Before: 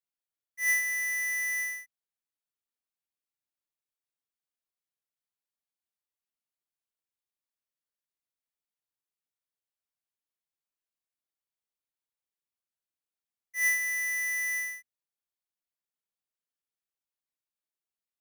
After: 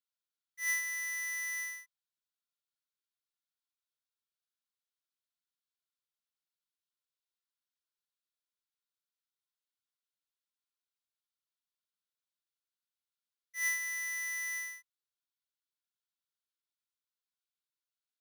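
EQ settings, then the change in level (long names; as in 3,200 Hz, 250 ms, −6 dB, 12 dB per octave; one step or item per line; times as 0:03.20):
Chebyshev high-pass with heavy ripple 1,000 Hz, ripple 9 dB
+2.0 dB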